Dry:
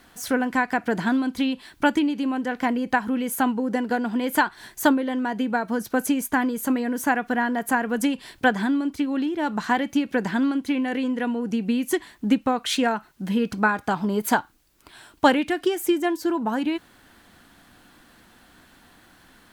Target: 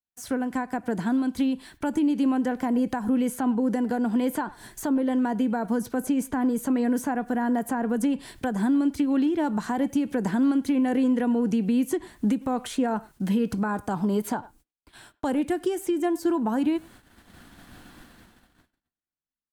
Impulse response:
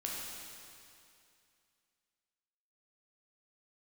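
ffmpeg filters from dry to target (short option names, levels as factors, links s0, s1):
-filter_complex "[0:a]adynamicequalizer=threshold=0.00316:dfrequency=8800:dqfactor=1.3:tfrequency=8800:tqfactor=1.3:attack=5:release=100:ratio=0.375:range=3:mode=boostabove:tftype=bell,dynaudnorm=f=250:g=13:m=5.62,agate=range=0.00501:threshold=0.00631:ratio=16:detection=peak,asplit=2[s0][s1];[s1]adelay=100,highpass=300,lowpass=3400,asoftclip=type=hard:threshold=0.335,volume=0.0631[s2];[s0][s2]amix=inputs=2:normalize=0,acrossover=split=210|1200|6600[s3][s4][s5][s6];[s3]acompressor=threshold=0.0355:ratio=4[s7];[s4]acompressor=threshold=0.178:ratio=4[s8];[s5]acompressor=threshold=0.0141:ratio=4[s9];[s6]acompressor=threshold=0.0141:ratio=4[s10];[s7][s8][s9][s10]amix=inputs=4:normalize=0,lowshelf=f=240:g=7,alimiter=limit=0.316:level=0:latency=1:release=84,volume=0.501"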